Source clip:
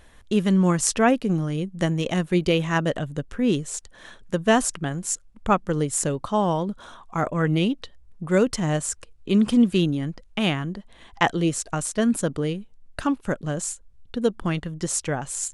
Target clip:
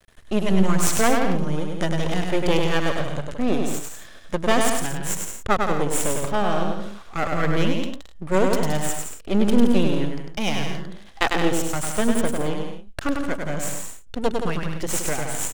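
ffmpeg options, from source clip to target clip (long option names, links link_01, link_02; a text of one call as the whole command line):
ffmpeg -i in.wav -filter_complex "[0:a]bandreject=frequency=970:width=5.3,aeval=exprs='max(val(0),0)':channel_layout=same,asplit=2[link_01][link_02];[link_02]aecho=0:1:100|170|219|253.3|277.3:0.631|0.398|0.251|0.158|0.1[link_03];[link_01][link_03]amix=inputs=2:normalize=0,volume=3.5dB" out.wav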